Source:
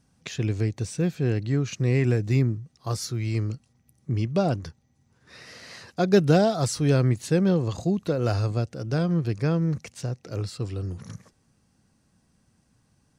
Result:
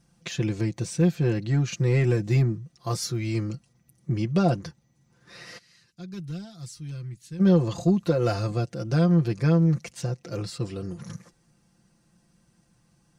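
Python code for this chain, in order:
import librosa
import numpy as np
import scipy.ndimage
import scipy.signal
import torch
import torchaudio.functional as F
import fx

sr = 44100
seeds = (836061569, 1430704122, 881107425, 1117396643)

y = 10.0 ** (-11.5 / 20.0) * np.tanh(x / 10.0 ** (-11.5 / 20.0))
y = fx.tone_stack(y, sr, knobs='6-0-2', at=(5.57, 7.39), fade=0.02)
y = y + 0.73 * np.pad(y, (int(5.8 * sr / 1000.0), 0))[:len(y)]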